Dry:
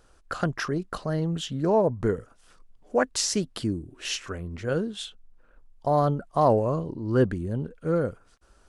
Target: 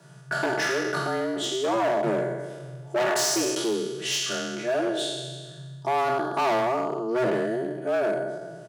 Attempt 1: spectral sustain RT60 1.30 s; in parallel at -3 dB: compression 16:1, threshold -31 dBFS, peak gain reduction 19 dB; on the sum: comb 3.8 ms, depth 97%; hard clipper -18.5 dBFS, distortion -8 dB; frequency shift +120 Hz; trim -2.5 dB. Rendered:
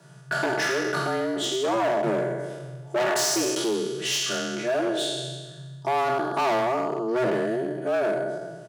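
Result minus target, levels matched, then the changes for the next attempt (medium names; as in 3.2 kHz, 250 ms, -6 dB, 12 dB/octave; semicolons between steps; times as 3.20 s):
compression: peak gain reduction -10.5 dB
change: compression 16:1, threshold -42 dBFS, peak gain reduction 29.5 dB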